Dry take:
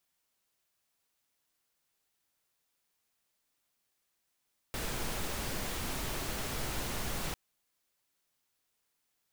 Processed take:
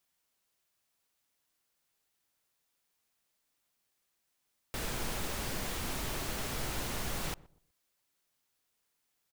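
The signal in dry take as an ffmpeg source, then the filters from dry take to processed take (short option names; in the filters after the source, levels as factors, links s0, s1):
-f lavfi -i "anoisesrc=c=pink:a=0.0813:d=2.6:r=44100:seed=1"
-filter_complex "[0:a]asplit=2[s0][s1];[s1]adelay=124,lowpass=f=820:p=1,volume=0.112,asplit=2[s2][s3];[s3]adelay=124,lowpass=f=820:p=1,volume=0.3,asplit=2[s4][s5];[s5]adelay=124,lowpass=f=820:p=1,volume=0.3[s6];[s0][s2][s4][s6]amix=inputs=4:normalize=0"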